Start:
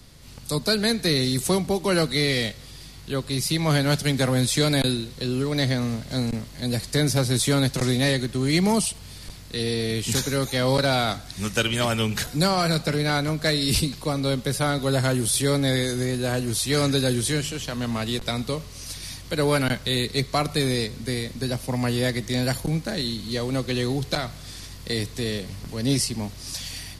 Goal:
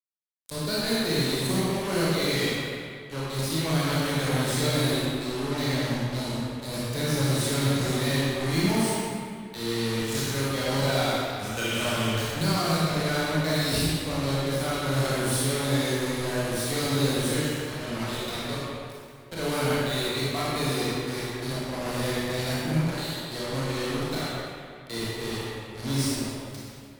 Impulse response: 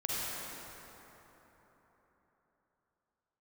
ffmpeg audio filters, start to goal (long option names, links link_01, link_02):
-filter_complex "[0:a]acrusher=bits=3:mix=0:aa=0.5,asettb=1/sr,asplit=3[link_01][link_02][link_03];[link_01]atrim=end=22.804[link_04];[link_02]atrim=start=22.8:end=23.23,asetpts=PTS-STARTPTS,afade=type=in:duration=0.004:curve=qsin,afade=type=out:start_time=0.426:duration=0.004:curve=qsin,highpass=370[link_05];[link_03]atrim=start=23.226[link_06];[link_04][link_05]acrossfade=duration=0.004:curve1=hsin:curve2=qsin[link_07];[link_07][link_06]acrossfade=duration=0.004:curve1=qsin:curve2=hsin[link_08];[1:a]atrim=start_sample=2205,asetrate=79380,aresample=44100[link_09];[link_08][link_09]afir=irnorm=-1:irlink=0,volume=-5dB"